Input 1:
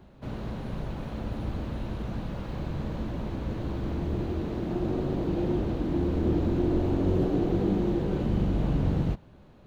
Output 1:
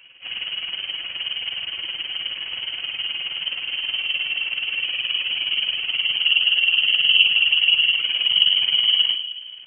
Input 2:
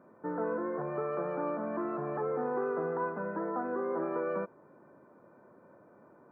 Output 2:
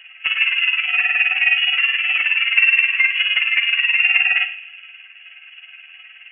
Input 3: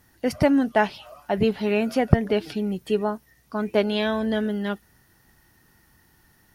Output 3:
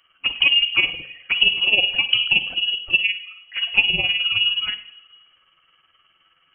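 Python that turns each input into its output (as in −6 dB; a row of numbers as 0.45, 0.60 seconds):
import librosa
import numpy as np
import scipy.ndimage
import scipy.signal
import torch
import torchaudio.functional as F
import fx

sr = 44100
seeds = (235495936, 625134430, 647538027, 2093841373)

y = fx.highpass(x, sr, hz=86.0, slope=6)
y = fx.dynamic_eq(y, sr, hz=1500.0, q=5.5, threshold_db=-52.0, ratio=4.0, max_db=-4)
y = y * (1.0 - 0.67 / 2.0 + 0.67 / 2.0 * np.cos(2.0 * np.pi * 19.0 * (np.arange(len(y)) / sr)))
y = fx.env_flanger(y, sr, rest_ms=11.9, full_db=-23.0)
y = fx.room_shoebox(y, sr, seeds[0], volume_m3=2700.0, walls='furnished', distance_m=1.2)
y = fx.freq_invert(y, sr, carrier_hz=3100)
y = y * 10.0 ** (-1.5 / 20.0) / np.max(np.abs(y))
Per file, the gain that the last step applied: +11.5, +22.0, +6.0 decibels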